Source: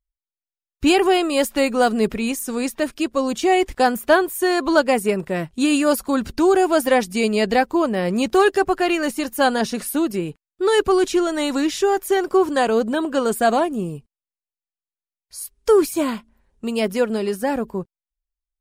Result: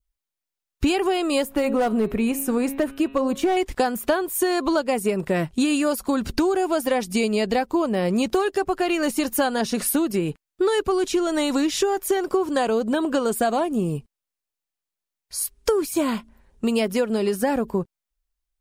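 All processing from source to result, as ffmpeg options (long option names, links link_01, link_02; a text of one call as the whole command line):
ffmpeg -i in.wav -filter_complex "[0:a]asettb=1/sr,asplit=3[link_01][link_02][link_03];[link_01]atrim=end=1.434[link_04];[link_02]atrim=start=1.43:end=3.57,asetpts=PTS-STARTPTS,afade=type=in:duration=0.004:curve=qsin,afade=type=out:start_time=2.136:duration=0.004:curve=qsin,equalizer=frequency=5200:width_type=o:width=1.9:gain=-12,bandreject=frequency=136.9:width_type=h:width=4,bandreject=frequency=273.8:width_type=h:width=4,bandreject=frequency=410.7:width_type=h:width=4,bandreject=frequency=547.6:width_type=h:width=4,bandreject=frequency=684.5:width_type=h:width=4,bandreject=frequency=821.4:width_type=h:width=4,bandreject=frequency=958.3:width_type=h:width=4,bandreject=frequency=1095.2:width_type=h:width=4,bandreject=frequency=1232.1:width_type=h:width=4,bandreject=frequency=1369:width_type=h:width=4,bandreject=frequency=1505.9:width_type=h:width=4,bandreject=frequency=1642.8:width_type=h:width=4,bandreject=frequency=1779.7:width_type=h:width=4,bandreject=frequency=1916.6:width_type=h:width=4,bandreject=frequency=2053.5:width_type=h:width=4,bandreject=frequency=2190.4:width_type=h:width=4,bandreject=frequency=2327.3:width_type=h:width=4,bandreject=frequency=2464.2:width_type=h:width=4,bandreject=frequency=2601.1:width_type=h:width=4,bandreject=frequency=2738:width_type=h:width=4,bandreject=frequency=2874.9:width_type=h:width=4,bandreject=frequency=3011.8:width_type=h:width=4,bandreject=frequency=3148.7:width_type=h:width=4,bandreject=frequency=3285.6:width_type=h:width=4,bandreject=frequency=3422.5:width_type=h:width=4,bandreject=frequency=3559.4:width_type=h:width=4,bandreject=frequency=3696.3:width_type=h:width=4,bandreject=frequency=3833.2:width_type=h:width=4,bandreject=frequency=3970.1:width_type=h:width=4,bandreject=frequency=4107:width_type=h:width=4,volume=13.5dB,asoftclip=hard,volume=-13.5dB[link_05];[link_03]atrim=start=3.566[link_06];[link_04][link_05]acrossfade=duration=0.004:curve1=hsin:curve2=qsin[link_07];[link_07][link_06]acrossfade=duration=0.004:curve1=qsin:curve2=hsin,adynamicequalizer=threshold=0.0126:dfrequency=1700:dqfactor=2.2:tfrequency=1700:tqfactor=2.2:attack=5:release=100:ratio=0.375:range=2:mode=cutabove:tftype=bell,acompressor=threshold=-24dB:ratio=10,volume=6dB" out.wav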